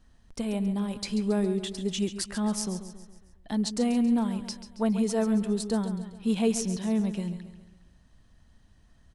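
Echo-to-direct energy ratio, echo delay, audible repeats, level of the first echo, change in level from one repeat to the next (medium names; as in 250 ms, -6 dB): -10.5 dB, 137 ms, 4, -11.5 dB, -6.0 dB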